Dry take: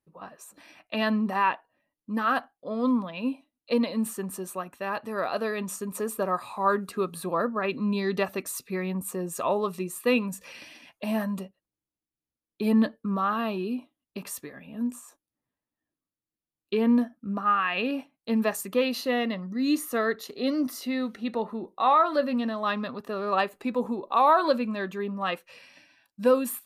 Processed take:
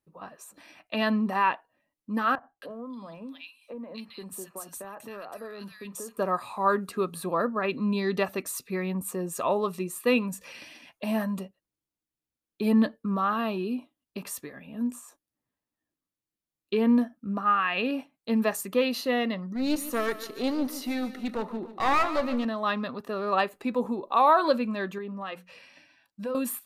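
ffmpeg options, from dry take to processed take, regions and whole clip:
-filter_complex "[0:a]asettb=1/sr,asplit=3[s0][s1][s2];[s0]atrim=end=2.354[s3];[s1]atrim=start=2.35:end=6.17,asetpts=PTS-STARTPTS,afade=t=in:d=0.004:c=qsin,afade=t=out:st=3.816:d=0.004:c=qsin,highshelf=f=4000:g=6.5,acompressor=threshold=0.0158:ratio=6:attack=3.2:release=140:knee=1:detection=peak,acrossover=split=160|1700[s4][s5][s6];[s4]adelay=30[s7];[s6]adelay=270[s8];[s7][s5][s8]amix=inputs=3:normalize=0,atrim=end_sample=168462[s9];[s2]atrim=start=6.166[s10];[s3][s9]acrossfade=d=0.004:c1=hsin:c2=qsin[s11];[s11][s10]acrossfade=d=0.004:c1=qsin:c2=hsin,asettb=1/sr,asplit=3[s12][s13][s14];[s12]atrim=end=19.474[s15];[s13]atrim=start=19.47:end=22.45,asetpts=PTS-STARTPTS,afade=t=in:d=0.004:c=qsin,afade=t=out:st=2.976:d=0.004:c=qsin,aeval=exprs='clip(val(0),-1,0.0335)':c=same,aecho=1:1:146|292|438|584|730:0.2|0.0978|0.0479|0.0235|0.0115,atrim=end_sample=131418[s16];[s14]atrim=start=22.446[s17];[s15][s16]acrossfade=d=0.004:c1=hsin:c2=qsin[s18];[s18][s17]acrossfade=d=0.004:c1=qsin:c2=hsin,asettb=1/sr,asplit=3[s19][s20][s21];[s19]atrim=end=24.984[s22];[s20]atrim=start=24.98:end=26.35,asetpts=PTS-STARTPTS,afade=t=in:d=0.004:c=qsin,afade=t=out:st=1.366:d=0.004:c=qsin,highshelf=f=6700:g=-6,bandreject=f=60:t=h:w=6,bandreject=f=120:t=h:w=6,bandreject=f=180:t=h:w=6,bandreject=f=240:t=h:w=6,acompressor=threshold=0.0178:ratio=2.5:attack=3.2:release=140:knee=1:detection=peak[s23];[s21]atrim=start=26.346[s24];[s22][s23]acrossfade=d=0.004:c1=hsin:c2=qsin[s25];[s25][s24]acrossfade=d=0.004:c1=qsin:c2=hsin"

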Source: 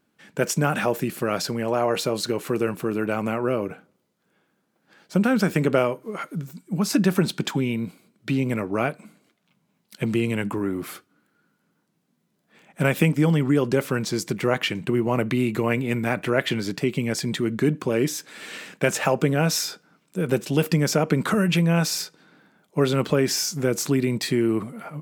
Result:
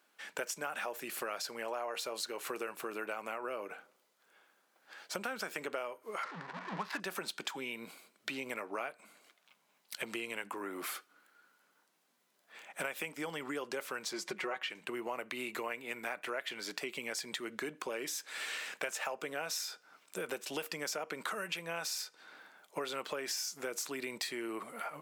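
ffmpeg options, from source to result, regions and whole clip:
-filter_complex "[0:a]asettb=1/sr,asplit=3[s0][s1][s2];[s0]atrim=end=6.234[s3];[s1]atrim=start=6.23:end=7,asetpts=PTS-STARTPTS,afade=t=in:d=0.004:c=qsin,afade=t=out:st=0.766:d=0.004:c=qsin,aeval=exprs='val(0)+0.5*0.0211*sgn(val(0))':c=same,highpass=140,equalizer=f=170:t=q:w=4:g=8,equalizer=f=330:t=q:w=4:g=-4,equalizer=f=590:t=q:w=4:g=-4,equalizer=f=1000:t=q:w=4:g=9,equalizer=f=1800:t=q:w=4:g=9,lowpass=f=4300:w=0.5412,lowpass=f=4300:w=1.3066,adynamicsmooth=sensitivity=5.5:basefreq=760[s4];[s2]atrim=start=6.996[s5];[s3][s4]acrossfade=d=0.004:c1=hsin:c2=qsin[s6];[s6][s5]acrossfade=d=0.004:c1=qsin:c2=hsin,asettb=1/sr,asplit=3[s7][s8][s9];[s7]atrim=end=14.134[s10];[s8]atrim=start=14.13:end=14.7,asetpts=PTS-STARTPTS,afade=t=in:d=0.004:c=qsin,afade=t=out:st=0.566:d=0.004:c=qsin,aemphasis=mode=reproduction:type=50kf,aecho=1:1:5.4:0.77,atrim=end_sample=25137[s11];[s9]atrim=start=14.696[s12];[s10][s11]acrossfade=d=0.004:c1=hsin:c2=qsin[s13];[s13][s12]acrossfade=d=0.004:c1=qsin:c2=hsin,highpass=670,acompressor=threshold=0.00891:ratio=5,volume=1.5"

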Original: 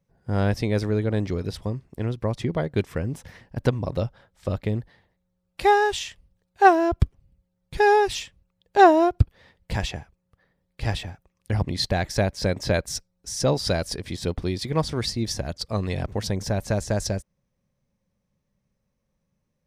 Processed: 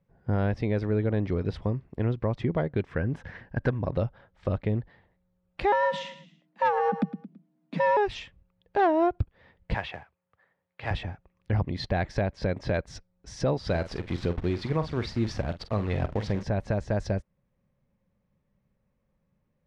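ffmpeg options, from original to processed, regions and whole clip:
-filter_complex "[0:a]asettb=1/sr,asplit=3[s0][s1][s2];[s0]atrim=end=2.914[s3];[s1]atrim=start=2.91:end=3.88,asetpts=PTS-STARTPTS,afade=t=in:d=0.004:c=qsin,afade=t=out:st=0.966:d=0.004:c=qsin,equalizer=f=1600:w=7.8:g=11,asoftclip=type=hard:threshold=0.251[s4];[s2]atrim=start=3.876[s5];[s3][s4]acrossfade=d=0.004:c1=hsin:c2=qsin[s6];[s6][s5]acrossfade=d=0.004:c1=qsin:c2=hsin,asettb=1/sr,asplit=3[s7][s8][s9];[s7]atrim=end=5.724[s10];[s8]atrim=start=5.72:end=7.97,asetpts=PTS-STARTPTS,afade=t=in:d=0.004:c=qsin,afade=t=out:st=2.246:d=0.004:c=qsin,afreqshift=130,aecho=1:1:110|220|330:0.2|0.0658|0.0217,atrim=end_sample=99225[s11];[s9]atrim=start=7.966[s12];[s10][s11]acrossfade=d=0.004:c1=hsin:c2=qsin[s13];[s13][s12]acrossfade=d=0.004:c1=qsin:c2=hsin,asettb=1/sr,asplit=3[s14][s15][s16];[s14]atrim=end=9.744[s17];[s15]atrim=start=9.74:end=10.91,asetpts=PTS-STARTPTS,afade=t=in:d=0.004:c=qsin,afade=t=out:st=1.166:d=0.004:c=qsin,highpass=f=75:w=0.5412,highpass=f=75:w=1.3066,acrossover=split=560 4400:gain=0.224 1 0.0891[s18][s19][s20];[s18][s19][s20]amix=inputs=3:normalize=0,acrusher=bits=3:mode=log:mix=0:aa=0.000001[s21];[s16]atrim=start=10.906[s22];[s17][s21]acrossfade=d=0.004:c1=hsin:c2=qsin[s23];[s23][s22]acrossfade=d=0.004:c1=qsin:c2=hsin,asettb=1/sr,asplit=3[s24][s25][s26];[s24]atrim=end=13.694[s27];[s25]atrim=start=13.69:end=16.43,asetpts=PTS-STARTPTS,afade=t=in:d=0.004:c=qsin,afade=t=out:st=2.736:d=0.004:c=qsin,agate=range=0.0224:threshold=0.0158:ratio=3:release=100:detection=peak,acrusher=bits=7:dc=4:mix=0:aa=0.000001,asplit=2[s28][s29];[s29]adelay=46,volume=0.237[s30];[s28][s30]amix=inputs=2:normalize=0,atrim=end_sample=120834[s31];[s26]atrim=start=16.426[s32];[s27][s31]acrossfade=d=0.004:c1=hsin:c2=qsin[s33];[s33][s32]acrossfade=d=0.004:c1=qsin:c2=hsin,lowpass=2500,acontrast=36,alimiter=limit=0.237:level=0:latency=1:release=495,volume=0.668"

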